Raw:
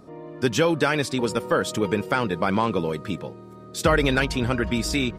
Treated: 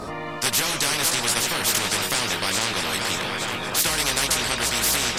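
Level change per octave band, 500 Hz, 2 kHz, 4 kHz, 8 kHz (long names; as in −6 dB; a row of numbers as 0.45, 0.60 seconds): −7.5, +2.5, +9.5, +14.5 decibels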